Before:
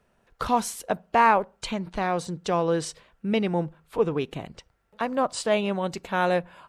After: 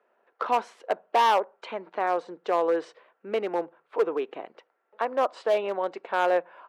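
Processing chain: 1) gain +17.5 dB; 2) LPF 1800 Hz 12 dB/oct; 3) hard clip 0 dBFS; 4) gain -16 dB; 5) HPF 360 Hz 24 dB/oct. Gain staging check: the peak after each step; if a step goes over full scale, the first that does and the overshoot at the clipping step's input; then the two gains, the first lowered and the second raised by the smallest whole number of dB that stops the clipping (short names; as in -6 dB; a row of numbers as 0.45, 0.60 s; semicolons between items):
+10.5, +9.5, 0.0, -16.0, -10.5 dBFS; step 1, 9.5 dB; step 1 +7.5 dB, step 4 -6 dB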